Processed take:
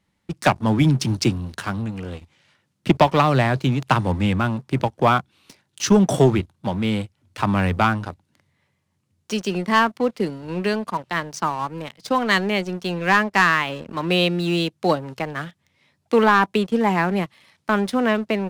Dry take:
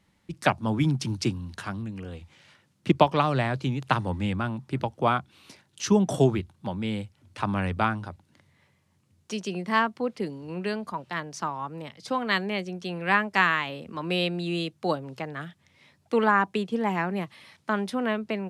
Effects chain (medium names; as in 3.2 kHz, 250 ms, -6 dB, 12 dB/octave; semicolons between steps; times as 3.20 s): 12.91–13.90 s: treble shelf 7.2 kHz -9 dB; waveshaping leveller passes 2